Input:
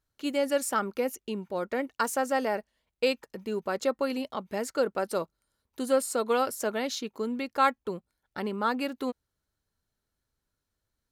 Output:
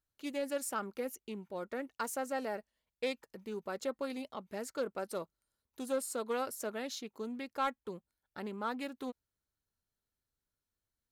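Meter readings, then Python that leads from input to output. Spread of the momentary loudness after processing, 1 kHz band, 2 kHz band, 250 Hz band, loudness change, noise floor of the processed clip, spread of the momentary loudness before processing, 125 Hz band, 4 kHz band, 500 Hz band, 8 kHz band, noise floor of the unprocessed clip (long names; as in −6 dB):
9 LU, −10.0 dB, −9.5 dB, −8.5 dB, −9.0 dB, below −85 dBFS, 10 LU, −8.5 dB, −9.5 dB, −9.5 dB, −7.0 dB, −84 dBFS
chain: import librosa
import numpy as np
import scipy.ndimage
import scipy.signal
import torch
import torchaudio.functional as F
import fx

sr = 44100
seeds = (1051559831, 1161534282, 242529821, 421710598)

y = fx.high_shelf(x, sr, hz=8300.0, db=5.0)
y = 10.0 ** (-13.0 / 20.0) * np.tanh(y / 10.0 ** (-13.0 / 20.0))
y = fx.doppler_dist(y, sr, depth_ms=0.11)
y = y * librosa.db_to_amplitude(-9.0)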